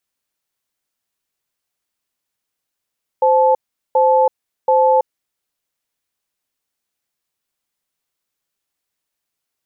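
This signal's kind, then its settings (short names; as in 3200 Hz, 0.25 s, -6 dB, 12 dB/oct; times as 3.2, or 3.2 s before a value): cadence 520 Hz, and 868 Hz, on 0.33 s, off 0.40 s, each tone -12.5 dBFS 1.87 s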